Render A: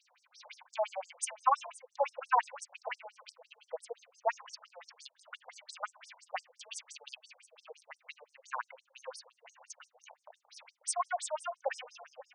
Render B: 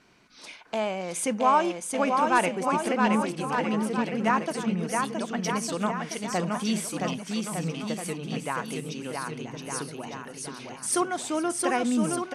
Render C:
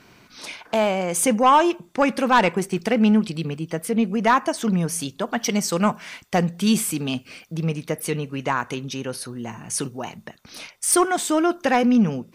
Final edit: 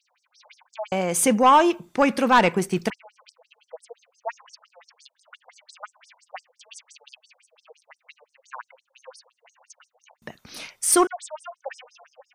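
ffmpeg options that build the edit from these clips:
-filter_complex "[2:a]asplit=2[a][b];[0:a]asplit=3[c][d][e];[c]atrim=end=0.922[f];[a]atrim=start=0.918:end=2.902[g];[d]atrim=start=2.898:end=10.222[h];[b]atrim=start=10.218:end=11.072[i];[e]atrim=start=11.068[j];[f][g]acrossfade=d=0.004:c1=hsin:c2=hsin[k];[k][h]acrossfade=d=0.004:c1=hsin:c2=hsin[l];[l][i]acrossfade=d=0.004:c1=hsin:c2=hsin[m];[m][j]acrossfade=d=0.004:c1=hsin:c2=hsin"

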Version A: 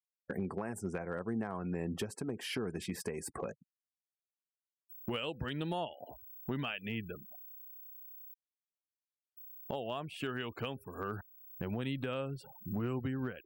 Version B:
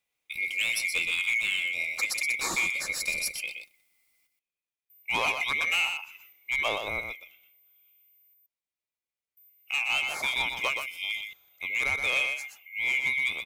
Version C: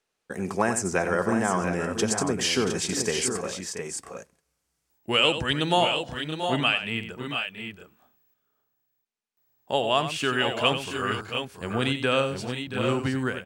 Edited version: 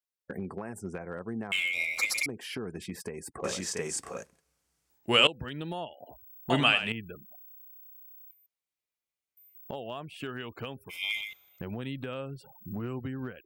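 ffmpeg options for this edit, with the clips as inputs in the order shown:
-filter_complex "[1:a]asplit=3[a][b][c];[2:a]asplit=2[d][e];[0:a]asplit=6[f][g][h][i][j][k];[f]atrim=end=1.522[l];[a]atrim=start=1.518:end=2.262[m];[g]atrim=start=2.258:end=3.442[n];[d]atrim=start=3.438:end=5.272[o];[h]atrim=start=5.268:end=6.502[p];[e]atrim=start=6.498:end=6.922[q];[i]atrim=start=6.918:end=8.312[r];[b]atrim=start=8.308:end=9.552[s];[j]atrim=start=9.548:end=10.91[t];[c]atrim=start=10.89:end=11.61[u];[k]atrim=start=11.59[v];[l][m]acrossfade=d=0.004:c1=hsin:c2=hsin[w];[w][n]acrossfade=d=0.004:c1=hsin:c2=hsin[x];[x][o]acrossfade=d=0.004:c1=hsin:c2=hsin[y];[y][p]acrossfade=d=0.004:c1=hsin:c2=hsin[z];[z][q]acrossfade=d=0.004:c1=hsin:c2=hsin[aa];[aa][r]acrossfade=d=0.004:c1=hsin:c2=hsin[ab];[ab][s]acrossfade=d=0.004:c1=hsin:c2=hsin[ac];[ac][t]acrossfade=d=0.004:c1=hsin:c2=hsin[ad];[ad][u]acrossfade=d=0.02:c1=tri:c2=tri[ae];[ae][v]acrossfade=d=0.02:c1=tri:c2=tri"

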